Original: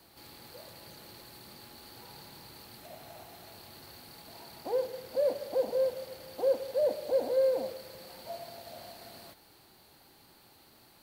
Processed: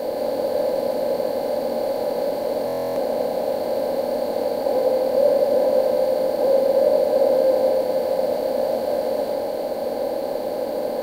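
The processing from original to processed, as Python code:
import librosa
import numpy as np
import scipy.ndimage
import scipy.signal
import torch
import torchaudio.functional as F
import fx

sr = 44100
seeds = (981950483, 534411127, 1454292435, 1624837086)

y = fx.bin_compress(x, sr, power=0.2)
y = fx.room_shoebox(y, sr, seeds[0], volume_m3=280.0, walls='furnished', distance_m=2.0)
y = fx.buffer_glitch(y, sr, at_s=(2.66,), block=1024, repeats=12)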